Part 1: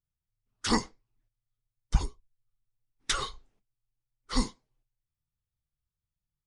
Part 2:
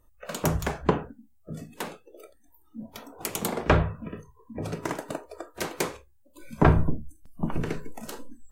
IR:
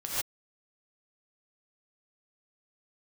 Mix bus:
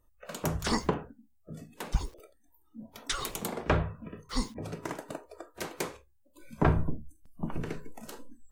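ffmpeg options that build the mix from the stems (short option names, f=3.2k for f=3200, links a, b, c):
-filter_complex "[0:a]acrusher=bits=8:mix=0:aa=0.000001,volume=-3.5dB[a];[1:a]volume=-6dB[b];[a][b]amix=inputs=2:normalize=0"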